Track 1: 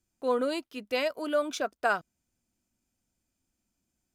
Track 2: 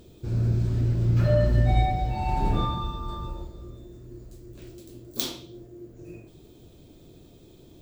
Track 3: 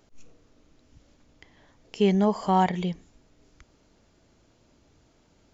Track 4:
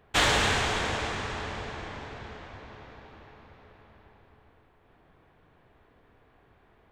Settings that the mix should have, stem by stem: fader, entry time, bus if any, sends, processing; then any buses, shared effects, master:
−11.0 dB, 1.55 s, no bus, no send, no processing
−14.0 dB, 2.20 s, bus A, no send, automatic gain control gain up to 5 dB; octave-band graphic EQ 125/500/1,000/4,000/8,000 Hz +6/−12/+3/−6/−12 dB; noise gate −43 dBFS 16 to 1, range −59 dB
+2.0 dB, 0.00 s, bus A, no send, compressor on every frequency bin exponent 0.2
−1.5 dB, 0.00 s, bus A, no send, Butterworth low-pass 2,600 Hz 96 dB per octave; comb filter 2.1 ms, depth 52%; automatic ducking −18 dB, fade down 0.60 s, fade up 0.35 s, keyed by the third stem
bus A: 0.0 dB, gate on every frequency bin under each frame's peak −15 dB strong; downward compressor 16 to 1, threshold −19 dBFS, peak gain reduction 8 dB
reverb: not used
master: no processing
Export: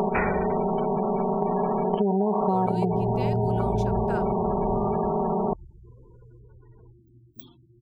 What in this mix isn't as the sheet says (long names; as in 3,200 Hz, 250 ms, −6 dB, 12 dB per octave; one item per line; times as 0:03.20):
stem 1: entry 1.55 s → 2.25 s
stem 4 −1.5 dB → +6.0 dB